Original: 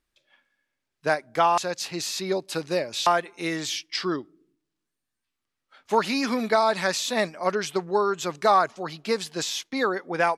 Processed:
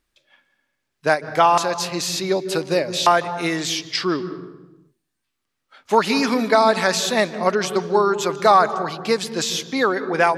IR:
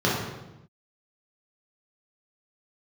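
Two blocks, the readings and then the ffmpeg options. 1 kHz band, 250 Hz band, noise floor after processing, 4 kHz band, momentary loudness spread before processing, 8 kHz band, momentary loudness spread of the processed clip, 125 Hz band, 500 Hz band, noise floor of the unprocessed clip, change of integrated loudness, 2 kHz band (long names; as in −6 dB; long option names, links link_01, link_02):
+5.5 dB, +6.0 dB, −77 dBFS, +5.5 dB, 7 LU, +5.5 dB, 7 LU, +7.0 dB, +6.0 dB, −83 dBFS, +6.0 dB, +5.5 dB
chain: -filter_complex "[0:a]asplit=2[link_01][link_02];[1:a]atrim=start_sample=2205,adelay=149[link_03];[link_02][link_03]afir=irnorm=-1:irlink=0,volume=-30dB[link_04];[link_01][link_04]amix=inputs=2:normalize=0,volume=5.5dB"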